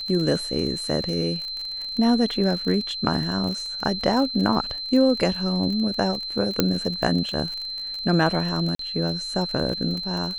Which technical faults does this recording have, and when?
crackle 29/s -28 dBFS
tone 4100 Hz -29 dBFS
6.6 pop -3 dBFS
8.75–8.79 gap 43 ms

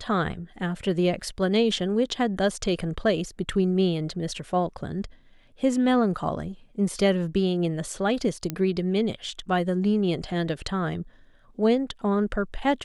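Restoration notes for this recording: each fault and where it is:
8.5 pop -13 dBFS

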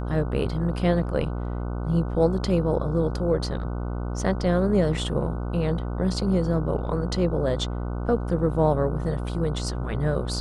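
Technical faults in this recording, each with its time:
buzz 60 Hz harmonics 25 -29 dBFS

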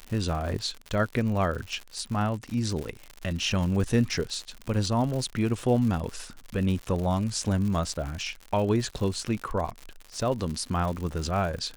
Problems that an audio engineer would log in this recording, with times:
crackle 120/s -32 dBFS

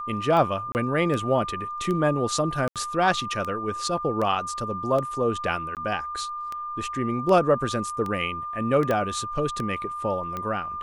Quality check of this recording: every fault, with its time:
tick 78 rpm -18 dBFS
tone 1200 Hz -30 dBFS
0.72–0.75 gap 29 ms
2.68–2.76 gap 77 ms
5.75–5.77 gap 18 ms
8.91 pop -13 dBFS

